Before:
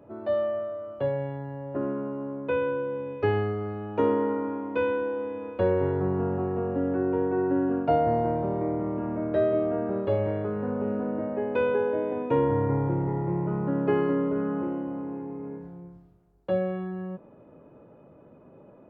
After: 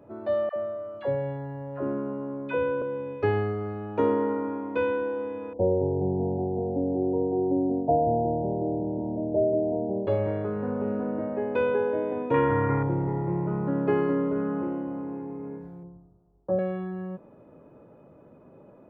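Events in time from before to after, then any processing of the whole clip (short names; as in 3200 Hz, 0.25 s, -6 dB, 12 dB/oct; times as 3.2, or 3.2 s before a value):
0.49–2.82 dispersion lows, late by 71 ms, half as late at 690 Hz
5.53–10.07 steep low-pass 900 Hz 96 dB/oct
12.34–12.83 band shelf 1800 Hz +11 dB
15.83–16.59 LPF 1100 Hz 24 dB/oct
whole clip: notch 2900 Hz, Q 21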